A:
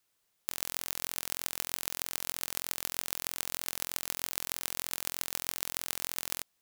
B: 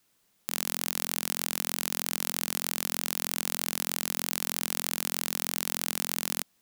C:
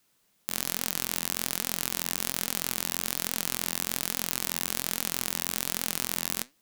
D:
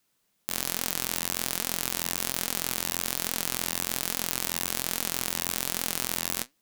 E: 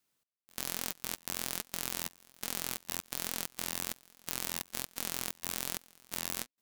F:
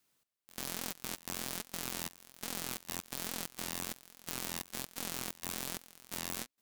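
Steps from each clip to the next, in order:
peaking EQ 210 Hz +9.5 dB 1.1 oct; peak limiter -8 dBFS, peak gain reduction 5 dB; trim +6.5 dB
flange 1.2 Hz, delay 3.5 ms, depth 9.1 ms, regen +80%; trim +5 dB
waveshaping leveller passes 2
trance gate "xx...xxx.x.xxx.x" 130 bpm -24 dB; trim -6.5 dB
saturation -16.5 dBFS, distortion -7 dB; trim +3.5 dB

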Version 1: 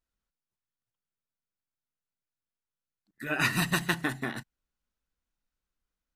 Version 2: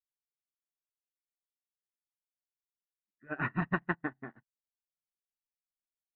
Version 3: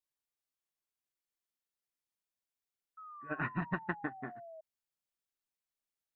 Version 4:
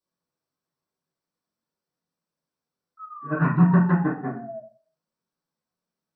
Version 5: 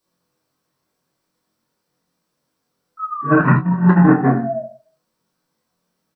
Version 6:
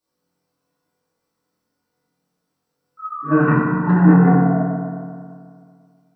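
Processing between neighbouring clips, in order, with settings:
inverse Chebyshev low-pass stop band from 7.3 kHz, stop band 70 dB; transient shaper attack 0 dB, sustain -4 dB; upward expansion 2.5:1, over -45 dBFS
compression 2.5:1, threshold -35 dBFS, peak gain reduction 7.5 dB; painted sound fall, 2.97–4.61 s, 630–1300 Hz -51 dBFS; trim +1 dB
reverberation RT60 0.45 s, pre-delay 3 ms, DRR -11 dB; trim -5 dB
compressor with a negative ratio -23 dBFS, ratio -0.5; on a send: early reflections 22 ms -5.5 dB, 38 ms -10.5 dB; on the sum: trim +9 dB
FDN reverb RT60 2.1 s, low-frequency decay 1.05×, high-frequency decay 0.4×, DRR -4 dB; trim -7.5 dB

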